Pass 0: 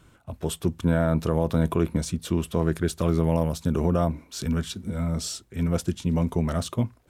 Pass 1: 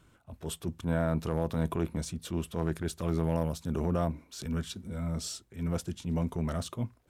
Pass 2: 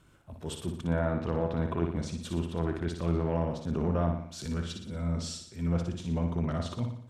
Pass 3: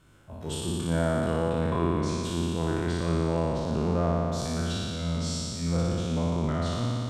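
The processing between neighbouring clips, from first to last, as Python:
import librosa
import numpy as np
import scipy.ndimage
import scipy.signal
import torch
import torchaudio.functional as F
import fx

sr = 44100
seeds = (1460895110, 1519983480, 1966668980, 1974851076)

y1 = fx.transient(x, sr, attack_db=-7, sustain_db=-1)
y1 = F.gain(torch.from_numpy(y1), -5.5).numpy()
y2 = fx.env_lowpass_down(y1, sr, base_hz=2900.0, full_db=-26.0)
y2 = fx.room_flutter(y2, sr, wall_m=10.1, rt60_s=0.62)
y3 = fx.spec_trails(y2, sr, decay_s=2.95)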